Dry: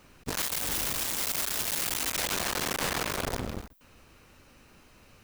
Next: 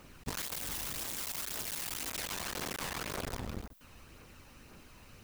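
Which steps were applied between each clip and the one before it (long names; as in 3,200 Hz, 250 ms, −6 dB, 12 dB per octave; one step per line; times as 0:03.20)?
downward compressor 10 to 1, threshold −35 dBFS, peak gain reduction 9.5 dB
phase shifter 1.9 Hz, delay 1.2 ms, feedback 30%
bit reduction 11 bits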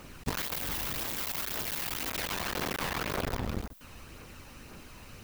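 dynamic equaliser 8,200 Hz, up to −8 dB, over −56 dBFS, Q 0.74
level +6.5 dB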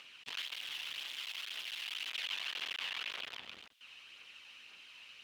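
in parallel at 0 dB: upward compression, threshold −37 dBFS
on the sum: resonant band-pass 3,000 Hz, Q 3.7
level −2 dB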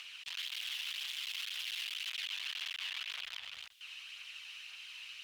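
guitar amp tone stack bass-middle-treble 10-0-10
brickwall limiter −39 dBFS, peak gain reduction 10.5 dB
level +9 dB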